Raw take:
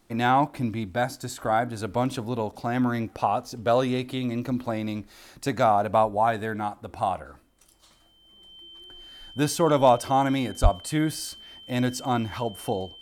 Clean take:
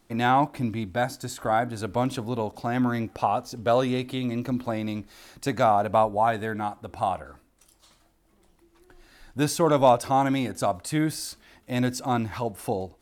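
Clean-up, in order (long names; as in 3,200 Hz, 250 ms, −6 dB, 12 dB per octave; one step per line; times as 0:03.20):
notch filter 3,100 Hz, Q 30
high-pass at the plosives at 0:10.62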